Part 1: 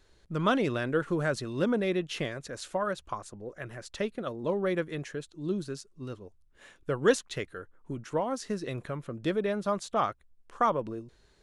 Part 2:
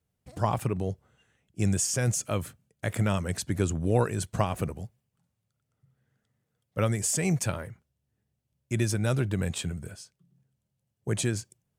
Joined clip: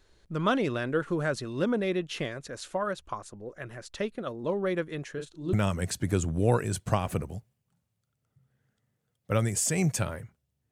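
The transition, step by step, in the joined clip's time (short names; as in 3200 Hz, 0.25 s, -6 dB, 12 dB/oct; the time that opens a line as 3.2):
part 1
5.12–5.53 doubler 36 ms -5.5 dB
5.53 switch to part 2 from 3 s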